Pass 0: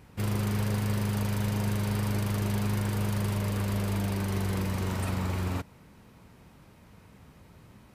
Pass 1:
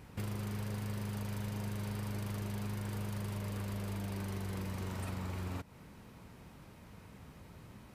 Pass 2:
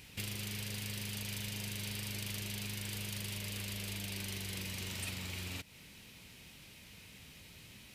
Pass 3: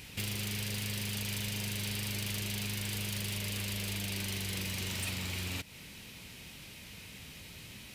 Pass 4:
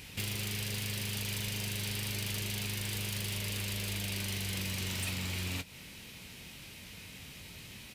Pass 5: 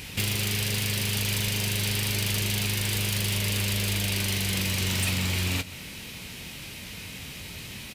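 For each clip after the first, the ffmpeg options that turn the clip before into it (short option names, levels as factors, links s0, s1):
-af "acompressor=threshold=0.0126:ratio=4"
-af "highshelf=f=1800:t=q:w=1.5:g=14,volume=0.562"
-af "asoftclip=type=tanh:threshold=0.0188,volume=2"
-filter_complex "[0:a]asplit=2[s0][s1];[s1]adelay=22,volume=0.251[s2];[s0][s2]amix=inputs=2:normalize=0"
-af "aecho=1:1:129:0.133,volume=2.82"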